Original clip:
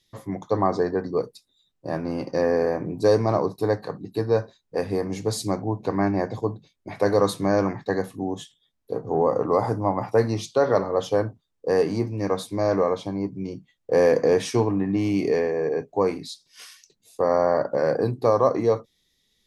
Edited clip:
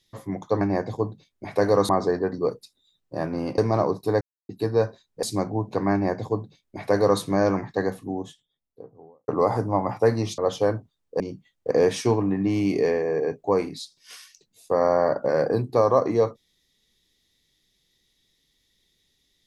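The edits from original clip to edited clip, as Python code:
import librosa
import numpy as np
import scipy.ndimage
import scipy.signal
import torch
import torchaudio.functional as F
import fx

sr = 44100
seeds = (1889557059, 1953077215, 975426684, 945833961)

y = fx.studio_fade_out(x, sr, start_s=7.83, length_s=1.57)
y = fx.edit(y, sr, fx.cut(start_s=2.3, length_s=0.83),
    fx.silence(start_s=3.76, length_s=0.28),
    fx.cut(start_s=4.78, length_s=0.57),
    fx.duplicate(start_s=6.05, length_s=1.28, to_s=0.61),
    fx.cut(start_s=10.5, length_s=0.39),
    fx.cut(start_s=11.71, length_s=1.72),
    fx.cut(start_s=13.94, length_s=0.26), tone=tone)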